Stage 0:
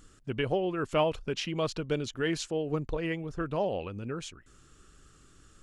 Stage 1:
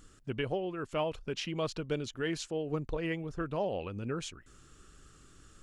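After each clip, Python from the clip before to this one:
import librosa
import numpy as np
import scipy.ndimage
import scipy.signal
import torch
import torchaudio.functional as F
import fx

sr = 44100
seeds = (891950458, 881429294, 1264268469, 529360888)

y = fx.rider(x, sr, range_db=4, speed_s=0.5)
y = F.gain(torch.from_numpy(y), -3.5).numpy()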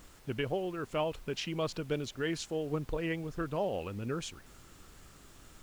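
y = fx.dmg_noise_colour(x, sr, seeds[0], colour='pink', level_db=-59.0)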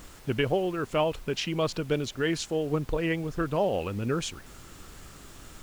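y = fx.rider(x, sr, range_db=3, speed_s=2.0)
y = F.gain(torch.from_numpy(y), 6.5).numpy()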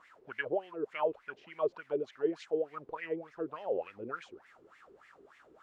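y = fx.filter_lfo_bandpass(x, sr, shape='sine', hz=3.4, low_hz=370.0, high_hz=2100.0, q=7.1)
y = F.gain(torch.from_numpy(y), 4.0).numpy()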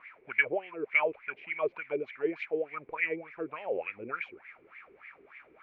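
y = fx.lowpass_res(x, sr, hz=2300.0, q=12.0)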